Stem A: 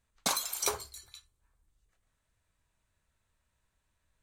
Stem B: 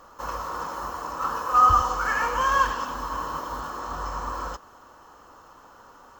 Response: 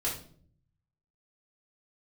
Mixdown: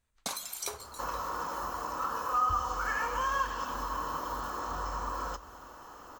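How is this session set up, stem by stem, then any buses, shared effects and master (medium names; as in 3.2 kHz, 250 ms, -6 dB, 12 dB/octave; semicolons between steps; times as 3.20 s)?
-2.5 dB, 0.00 s, send -17.5 dB, none
0.0 dB, 0.80 s, send -18.5 dB, treble shelf 9.5 kHz +5.5 dB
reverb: on, RT60 0.50 s, pre-delay 3 ms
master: compression 2:1, threshold -36 dBFS, peak gain reduction 13 dB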